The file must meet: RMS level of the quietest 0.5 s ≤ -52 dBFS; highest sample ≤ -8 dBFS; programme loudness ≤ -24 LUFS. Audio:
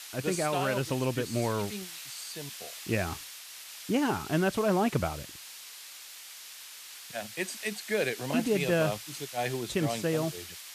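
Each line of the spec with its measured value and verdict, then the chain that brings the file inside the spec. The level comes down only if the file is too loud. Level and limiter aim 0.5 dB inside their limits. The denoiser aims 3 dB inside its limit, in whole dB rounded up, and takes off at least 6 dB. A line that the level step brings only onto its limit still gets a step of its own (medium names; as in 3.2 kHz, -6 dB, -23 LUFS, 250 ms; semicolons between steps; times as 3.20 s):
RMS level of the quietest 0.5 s -47 dBFS: fail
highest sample -14.5 dBFS: pass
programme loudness -31.0 LUFS: pass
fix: noise reduction 8 dB, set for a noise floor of -47 dBFS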